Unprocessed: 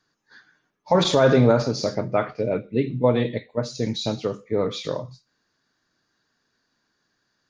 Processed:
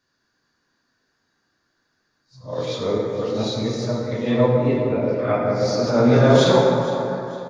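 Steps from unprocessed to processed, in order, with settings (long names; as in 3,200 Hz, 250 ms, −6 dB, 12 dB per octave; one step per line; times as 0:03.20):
played backwards from end to start
repeating echo 460 ms, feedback 35%, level −16 dB
dense smooth reverb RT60 2.9 s, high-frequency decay 0.4×, DRR −3.5 dB
level −2.5 dB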